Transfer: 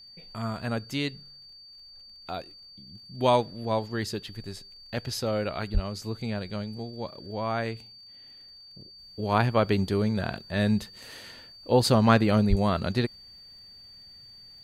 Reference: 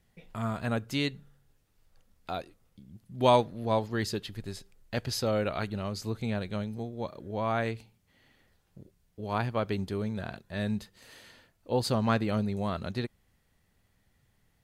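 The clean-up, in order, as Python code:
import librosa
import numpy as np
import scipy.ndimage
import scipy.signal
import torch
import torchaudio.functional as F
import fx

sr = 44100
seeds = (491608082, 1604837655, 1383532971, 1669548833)

y = fx.fix_declick_ar(x, sr, threshold=6.5)
y = fx.notch(y, sr, hz=4600.0, q=30.0)
y = fx.highpass(y, sr, hz=140.0, slope=24, at=(5.73, 5.85), fade=0.02)
y = fx.highpass(y, sr, hz=140.0, slope=24, at=(12.49, 12.61), fade=0.02)
y = fx.fix_level(y, sr, at_s=8.98, step_db=-7.0)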